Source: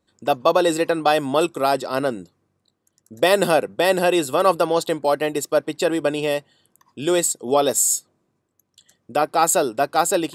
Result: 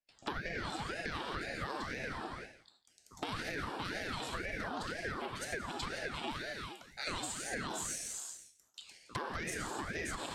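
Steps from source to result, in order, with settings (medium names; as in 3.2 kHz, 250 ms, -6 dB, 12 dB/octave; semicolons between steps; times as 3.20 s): single-diode clipper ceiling -17.5 dBFS; gated-style reverb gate 400 ms falling, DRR 1 dB; gate with hold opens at -53 dBFS; low-pass 2.8 kHz 12 dB/octave; tilt EQ +4.5 dB/octave; on a send: thinning echo 169 ms, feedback 15%, high-pass 980 Hz, level -14 dB; on the sum: peak limiter -12.5 dBFS, peak gain reduction 9.5 dB; high-pass 450 Hz 24 dB/octave; peaking EQ 2.1 kHz -13 dB 0.58 oct; compression 10:1, threshold -38 dBFS, peak gain reduction 18 dB; ring modulator with a swept carrier 700 Hz, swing 70%, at 2 Hz; trim +4 dB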